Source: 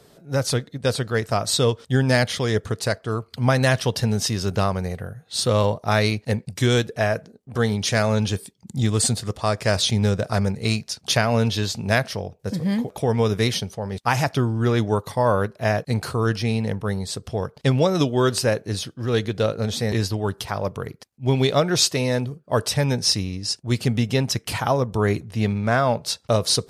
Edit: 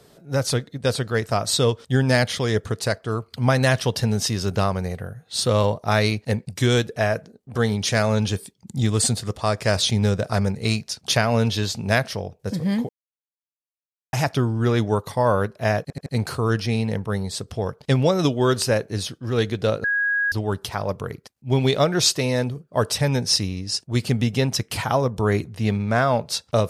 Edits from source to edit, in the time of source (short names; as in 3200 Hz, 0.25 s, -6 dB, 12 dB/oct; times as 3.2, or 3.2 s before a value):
12.89–14.13 mute
15.82 stutter 0.08 s, 4 plays
19.6–20.08 bleep 1650 Hz -18.5 dBFS